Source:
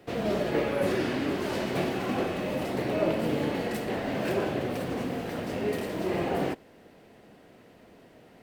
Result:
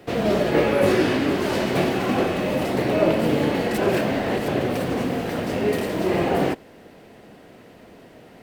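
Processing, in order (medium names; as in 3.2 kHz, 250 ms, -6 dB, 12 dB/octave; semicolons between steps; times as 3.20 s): 0.55–1.17 s: doubling 19 ms -6 dB; 3.78–4.48 s: reverse; trim +7.5 dB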